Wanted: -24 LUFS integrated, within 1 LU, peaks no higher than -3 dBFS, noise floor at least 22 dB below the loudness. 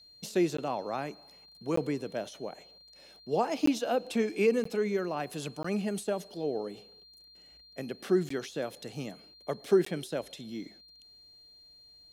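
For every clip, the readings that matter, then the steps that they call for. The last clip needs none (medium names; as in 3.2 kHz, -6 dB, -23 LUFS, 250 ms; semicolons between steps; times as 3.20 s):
dropouts 7; longest dropout 14 ms; steady tone 4.2 kHz; tone level -54 dBFS; loudness -32.5 LUFS; peak level -13.5 dBFS; loudness target -24.0 LUFS
-> interpolate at 0.57/1.76/3.66/4.64/5.63/8.29/9.85 s, 14 ms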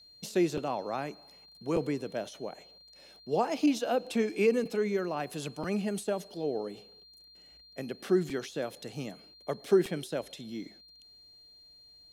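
dropouts 0; steady tone 4.2 kHz; tone level -54 dBFS
-> band-stop 4.2 kHz, Q 30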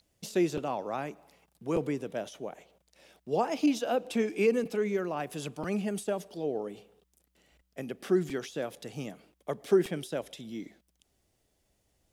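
steady tone not found; loudness -32.0 LUFS; peak level -13.5 dBFS; loudness target -24.0 LUFS
-> trim +8 dB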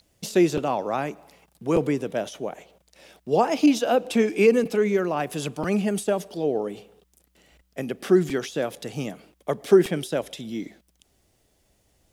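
loudness -24.0 LUFS; peak level -5.5 dBFS; noise floor -68 dBFS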